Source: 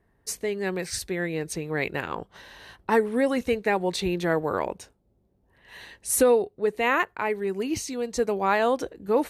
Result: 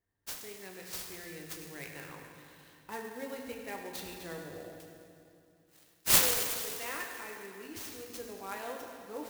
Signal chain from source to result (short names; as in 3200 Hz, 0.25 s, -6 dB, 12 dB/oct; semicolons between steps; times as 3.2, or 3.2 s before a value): pre-emphasis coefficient 0.8; 4.37–6.07 spectral gain 760–11000 Hz -18 dB; 4.68–6.83 tilt +3 dB/oct; reverb RT60 2.6 s, pre-delay 5 ms, DRR 0 dB; clock jitter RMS 0.035 ms; gain -7.5 dB